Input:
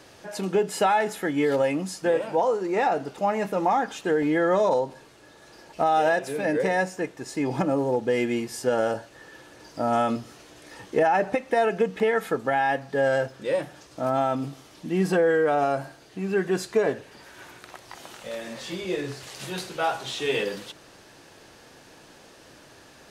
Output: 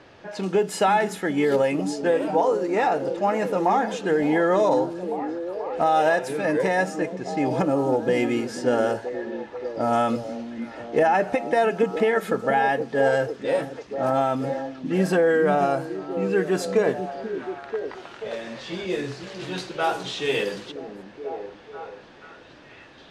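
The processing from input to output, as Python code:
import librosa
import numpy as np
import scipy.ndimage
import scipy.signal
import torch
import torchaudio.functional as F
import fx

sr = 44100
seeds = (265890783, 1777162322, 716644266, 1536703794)

y = fx.env_lowpass(x, sr, base_hz=2900.0, full_db=-21.5)
y = fx.echo_stepped(y, sr, ms=486, hz=240.0, octaves=0.7, feedback_pct=70, wet_db=-5)
y = y * librosa.db_to_amplitude(1.5)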